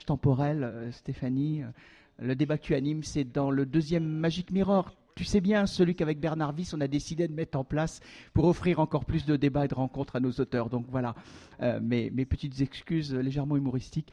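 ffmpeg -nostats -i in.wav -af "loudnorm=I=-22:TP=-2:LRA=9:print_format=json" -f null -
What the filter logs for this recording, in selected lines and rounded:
"input_i" : "-29.9",
"input_tp" : "-11.0",
"input_lra" : "2.9",
"input_thresh" : "-40.1",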